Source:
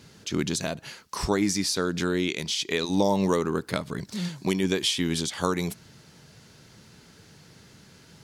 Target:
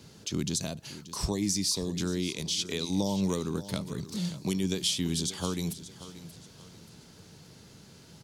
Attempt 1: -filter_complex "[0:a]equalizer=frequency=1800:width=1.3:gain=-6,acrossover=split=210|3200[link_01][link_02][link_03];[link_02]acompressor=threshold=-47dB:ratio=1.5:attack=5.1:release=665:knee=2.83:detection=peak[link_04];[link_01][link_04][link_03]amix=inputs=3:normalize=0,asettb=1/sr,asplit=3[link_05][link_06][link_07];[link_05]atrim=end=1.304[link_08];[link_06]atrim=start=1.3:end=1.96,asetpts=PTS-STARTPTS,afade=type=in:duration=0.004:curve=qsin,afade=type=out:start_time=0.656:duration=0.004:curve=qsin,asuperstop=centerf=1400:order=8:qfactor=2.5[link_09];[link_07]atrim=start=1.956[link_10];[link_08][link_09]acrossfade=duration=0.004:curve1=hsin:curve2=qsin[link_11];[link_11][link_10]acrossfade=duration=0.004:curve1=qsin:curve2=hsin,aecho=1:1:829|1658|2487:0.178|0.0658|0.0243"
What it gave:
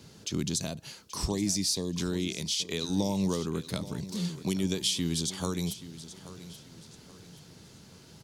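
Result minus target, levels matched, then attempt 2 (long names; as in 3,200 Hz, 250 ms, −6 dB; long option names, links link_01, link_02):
echo 248 ms late
-filter_complex "[0:a]equalizer=frequency=1800:width=1.3:gain=-6,acrossover=split=210|3200[link_01][link_02][link_03];[link_02]acompressor=threshold=-47dB:ratio=1.5:attack=5.1:release=665:knee=2.83:detection=peak[link_04];[link_01][link_04][link_03]amix=inputs=3:normalize=0,asettb=1/sr,asplit=3[link_05][link_06][link_07];[link_05]atrim=end=1.304[link_08];[link_06]atrim=start=1.3:end=1.96,asetpts=PTS-STARTPTS,afade=type=in:duration=0.004:curve=qsin,afade=type=out:start_time=0.656:duration=0.004:curve=qsin,asuperstop=centerf=1400:order=8:qfactor=2.5[link_09];[link_07]atrim=start=1.956[link_10];[link_08][link_09]acrossfade=duration=0.004:curve1=hsin:curve2=qsin[link_11];[link_11][link_10]acrossfade=duration=0.004:curve1=qsin:curve2=hsin,aecho=1:1:581|1162|1743:0.178|0.0658|0.0243"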